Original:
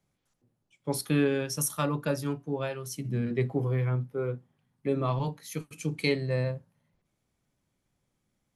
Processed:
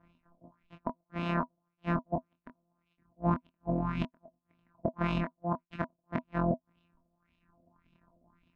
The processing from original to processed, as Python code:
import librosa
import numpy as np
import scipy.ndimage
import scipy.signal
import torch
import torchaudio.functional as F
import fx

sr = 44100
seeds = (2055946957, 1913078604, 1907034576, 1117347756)

y = np.r_[np.sort(x[:len(x) // 256 * 256].reshape(-1, 256), axis=1).ravel(), x[len(x) // 256 * 256:]]
y = fx.low_shelf(y, sr, hz=150.0, db=5.0)
y = fx.over_compress(y, sr, threshold_db=-33.0, ratio=-1.0)
y = fx.gate_flip(y, sr, shuts_db=-24.0, range_db=-42)
y = fx.filter_lfo_lowpass(y, sr, shape='sine', hz=1.8, low_hz=610.0, high_hz=3000.0, q=2.9)
y = fx.dereverb_blind(y, sr, rt60_s=1.3)
y = fx.doubler(y, sr, ms=24.0, db=-6)
y = fx.small_body(y, sr, hz=(250.0, 650.0, 970.0), ring_ms=70, db=17)